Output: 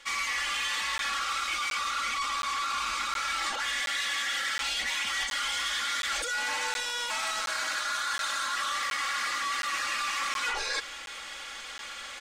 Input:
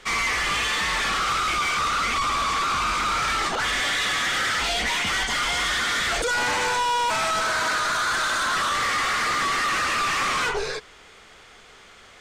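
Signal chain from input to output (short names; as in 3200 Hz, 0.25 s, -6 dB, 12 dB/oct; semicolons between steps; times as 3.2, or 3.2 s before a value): tilt shelf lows -7.5 dB, about 660 Hz; comb 3.6 ms, depth 95%; reverse; compressor 8:1, threshold -29 dBFS, peak gain reduction 16.5 dB; reverse; crackling interface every 0.72 s, samples 512, zero, from 0.98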